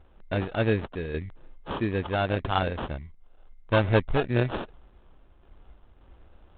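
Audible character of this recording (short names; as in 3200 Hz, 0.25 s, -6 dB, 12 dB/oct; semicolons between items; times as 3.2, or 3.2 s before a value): random-step tremolo; aliases and images of a low sample rate 2100 Hz, jitter 0%; IMA ADPCM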